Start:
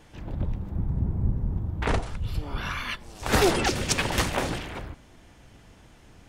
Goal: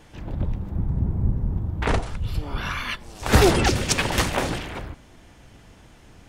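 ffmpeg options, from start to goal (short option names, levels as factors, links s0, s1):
-filter_complex "[0:a]asettb=1/sr,asplit=3[s0][s1][s2];[s0]atrim=end=3.334[s3];[s1]atrim=start=3.33:end=3.77,asetpts=PTS-STARTPTS,afade=t=in:d=0.004:c=qsin,afade=t=out:st=0.436:d=0.004:c=qsin,equalizer=f=75:w=0.5:g=7.5[s4];[s2]atrim=start=3.766[s5];[s3][s4]acrossfade=d=0.004:c1=hsin:c2=qsin[s6];[s6][s5]acrossfade=d=0.004:c1=qsin:c2=hsin,volume=1.41"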